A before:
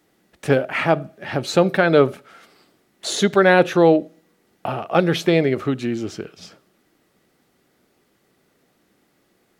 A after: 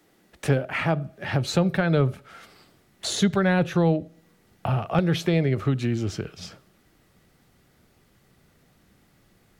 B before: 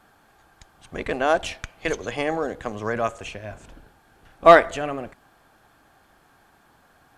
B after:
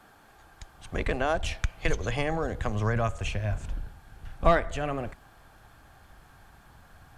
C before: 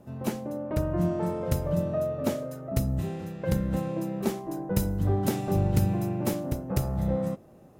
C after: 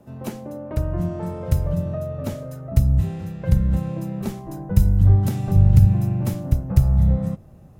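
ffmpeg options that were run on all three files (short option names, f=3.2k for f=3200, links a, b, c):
-filter_complex "[0:a]asubboost=boost=6.5:cutoff=130,acrossover=split=190[a][b];[b]acompressor=threshold=-31dB:ratio=2[c];[a][c]amix=inputs=2:normalize=0,volume=1.5dB"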